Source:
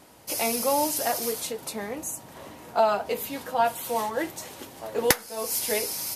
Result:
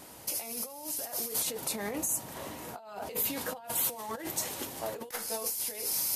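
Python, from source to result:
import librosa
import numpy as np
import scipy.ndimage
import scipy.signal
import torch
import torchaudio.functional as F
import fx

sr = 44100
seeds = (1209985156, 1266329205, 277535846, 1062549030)

y = fx.over_compress(x, sr, threshold_db=-35.0, ratio=-1.0)
y = fx.high_shelf(y, sr, hz=6500.0, db=7.5)
y = y * 10.0 ** (-4.5 / 20.0)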